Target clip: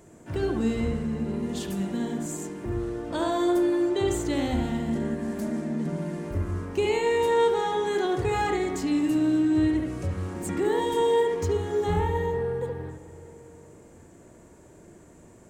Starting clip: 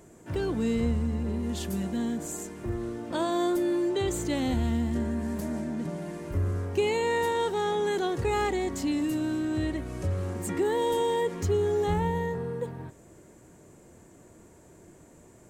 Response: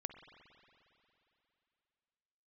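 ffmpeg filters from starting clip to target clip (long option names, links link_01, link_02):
-filter_complex "[0:a]equalizer=frequency=12000:width=5:gain=-6.5,asplit=2[link_01][link_02];[1:a]atrim=start_sample=2205,lowpass=2800,adelay=71[link_03];[link_02][link_03]afir=irnorm=-1:irlink=0,volume=1dB[link_04];[link_01][link_04]amix=inputs=2:normalize=0"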